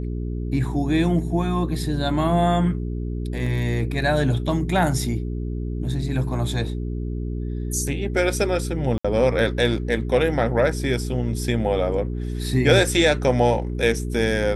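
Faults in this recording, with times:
mains hum 60 Hz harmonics 7 −27 dBFS
0:03.46: drop-out 4 ms
0:08.98–0:09.04: drop-out 65 ms

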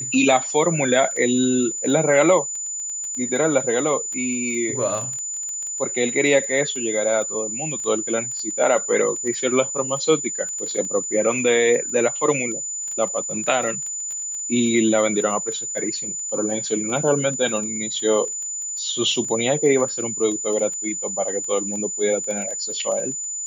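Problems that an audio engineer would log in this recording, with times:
surface crackle 11 per second −27 dBFS
whistle 7,000 Hz −26 dBFS

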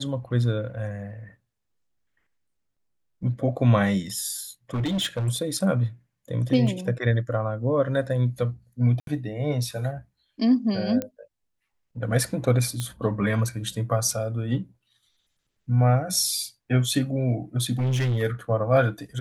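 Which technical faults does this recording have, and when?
0:04.74–0:05.29: clipping −22.5 dBFS
0:06.67: drop-out 2.3 ms
0:09.00–0:09.07: drop-out 72 ms
0:11.02: click −15 dBFS
0:12.80: click −15 dBFS
0:17.79–0:18.23: clipping −21 dBFS

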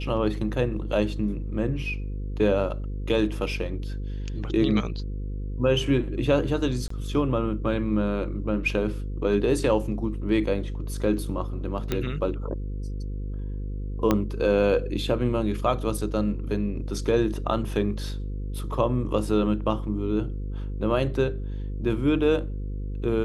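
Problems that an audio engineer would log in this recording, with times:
mains buzz 50 Hz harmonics 10 −31 dBFS
0:06.88–0:06.90: drop-out 24 ms
0:11.92: click −12 dBFS
0:14.11: click −8 dBFS

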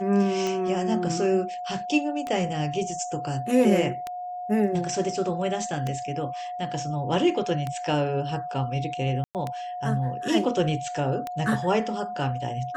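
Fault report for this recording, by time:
scratch tick 33 1/3 rpm −16 dBFS
whistle 720 Hz −31 dBFS
0:09.24–0:09.35: drop-out 108 ms

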